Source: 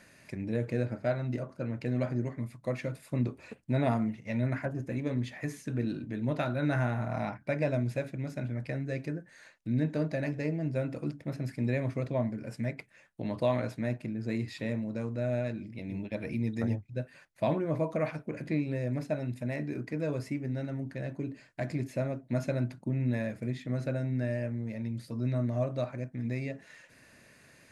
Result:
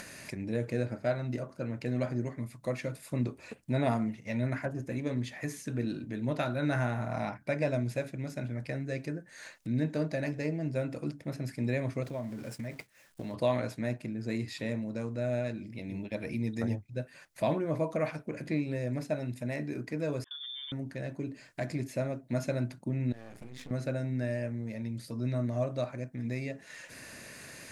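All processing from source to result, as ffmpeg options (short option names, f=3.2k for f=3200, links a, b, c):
-filter_complex "[0:a]asettb=1/sr,asplit=3[a][b][c];[a]atrim=end=12.034[d];[b]atrim=start=12.03:end=13.34,asetpts=PTS-STARTPTS,afade=t=in:d=0.004:c=qsin,afade=t=out:st=1.306:d=0.004:c=qsin,aeval=exprs='val(0)+0.5*0.00447*sgn(val(0))':c=same,agate=range=-33dB:threshold=-39dB:ratio=3:release=100:detection=peak,acompressor=threshold=-35dB:ratio=2.5:attack=3.2:release=140:knee=1:detection=peak[e];[c]atrim=start=13.336[f];[d][e]acrossfade=d=0.004:c1=hsin:c2=qsin[g];[g][f]acrossfade=d=0.004:c1=qsin:c2=hsin,asettb=1/sr,asplit=3[h][i][j];[h]atrim=end=20.244[k];[i]atrim=start=20.24:end=20.72,asetpts=PTS-STARTPTS,afade=t=in:d=0.004:c=qsin,afade=t=out:st=0.476:d=0.004:c=qsin,agate=range=-33dB:threshold=-40dB:ratio=3:release=100:detection=peak,acompressor=threshold=-43dB:ratio=5:attack=3.2:release=140:knee=1:detection=peak,lowpass=f=3.1k:t=q:w=0.5098,lowpass=f=3.1k:t=q:w=0.6013,lowpass=f=3.1k:t=q:w=0.9,lowpass=f=3.1k:t=q:w=2.563,afreqshift=-3700[l];[j]atrim=start=20.716[m];[k][l]acrossfade=d=0.004:c1=hsin:c2=qsin[n];[n][m]acrossfade=d=0.004:c1=qsin:c2=hsin,asettb=1/sr,asplit=3[o][p][q];[o]atrim=end=23.124[r];[p]atrim=start=23.12:end=23.71,asetpts=PTS-STARTPTS,afade=t=in:d=0.004:c=qsin,afade=t=out:st=0.586:d=0.004:c=qsin,acompressor=threshold=-38dB:ratio=16:attack=3.2:release=140:knee=1:detection=peak,aeval=exprs='max(val(0),0)':c=same[s];[q]atrim=start=23.706[t];[r][s]acrossfade=d=0.004:c1=hsin:c2=qsin[u];[u][t]acrossfade=d=0.004:c1=qsin:c2=hsin,bass=f=250:g=-2,treble=f=4k:g=5,acompressor=mode=upward:threshold=-37dB:ratio=2.5"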